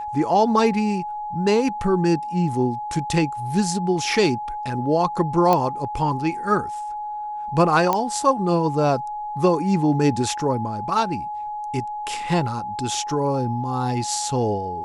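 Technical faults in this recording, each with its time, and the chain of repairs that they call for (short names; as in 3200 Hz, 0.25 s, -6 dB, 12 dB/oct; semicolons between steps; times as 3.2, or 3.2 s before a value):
tone 840 Hz -27 dBFS
5.53 pop -6 dBFS
7.93 pop -7 dBFS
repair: de-click; notch 840 Hz, Q 30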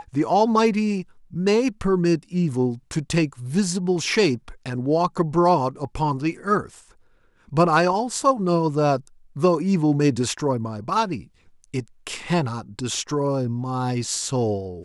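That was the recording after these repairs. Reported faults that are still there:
none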